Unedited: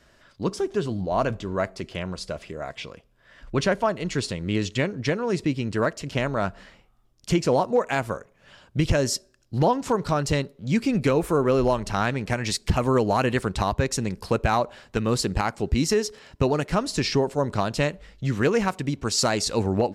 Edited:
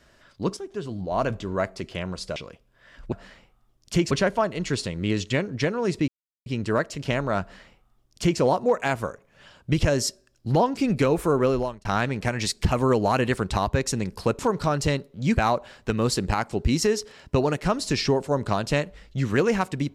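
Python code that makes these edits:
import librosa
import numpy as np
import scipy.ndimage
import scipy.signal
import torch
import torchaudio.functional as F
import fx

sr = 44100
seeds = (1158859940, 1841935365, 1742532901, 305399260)

y = fx.edit(x, sr, fx.fade_in_from(start_s=0.57, length_s=0.77, floor_db=-12.0),
    fx.cut(start_s=2.36, length_s=0.44),
    fx.insert_silence(at_s=5.53, length_s=0.38),
    fx.duplicate(start_s=6.48, length_s=0.99, to_s=3.56),
    fx.move(start_s=9.84, length_s=0.98, to_s=14.44),
    fx.fade_out_span(start_s=11.49, length_s=0.41), tone=tone)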